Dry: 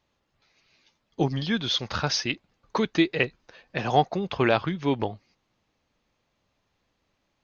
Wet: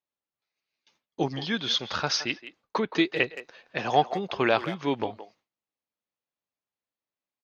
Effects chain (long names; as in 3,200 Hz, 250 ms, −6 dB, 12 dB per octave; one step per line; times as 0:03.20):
far-end echo of a speakerphone 170 ms, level −13 dB
0:02.15–0:02.96: treble cut that deepens with the level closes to 1,900 Hz, closed at −20 dBFS
high-pass filter 290 Hz 6 dB per octave
noise gate with hold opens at −51 dBFS